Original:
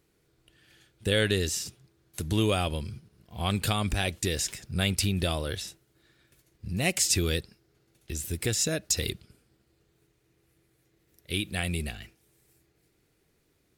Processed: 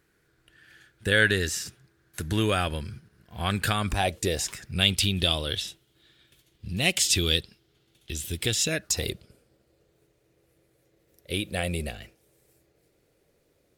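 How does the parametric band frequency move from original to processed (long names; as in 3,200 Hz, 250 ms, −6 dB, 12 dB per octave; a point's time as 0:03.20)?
parametric band +12 dB 0.58 octaves
0:03.81 1,600 Hz
0:04.21 430 Hz
0:04.85 3,300 Hz
0:08.64 3,300 Hz
0:09.08 550 Hz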